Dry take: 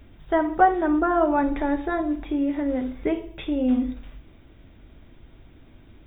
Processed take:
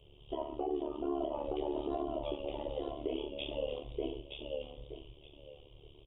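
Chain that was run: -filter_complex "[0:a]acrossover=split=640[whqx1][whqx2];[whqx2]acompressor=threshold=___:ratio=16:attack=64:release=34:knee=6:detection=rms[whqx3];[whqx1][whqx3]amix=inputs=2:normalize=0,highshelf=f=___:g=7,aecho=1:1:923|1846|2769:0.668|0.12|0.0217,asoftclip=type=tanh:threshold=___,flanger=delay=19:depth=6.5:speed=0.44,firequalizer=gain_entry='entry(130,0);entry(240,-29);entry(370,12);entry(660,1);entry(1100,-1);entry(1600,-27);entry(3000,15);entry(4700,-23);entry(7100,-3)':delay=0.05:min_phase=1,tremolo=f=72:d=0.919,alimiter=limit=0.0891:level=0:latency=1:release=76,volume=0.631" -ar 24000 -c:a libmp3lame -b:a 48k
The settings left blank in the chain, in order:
0.0178, 3400, 0.251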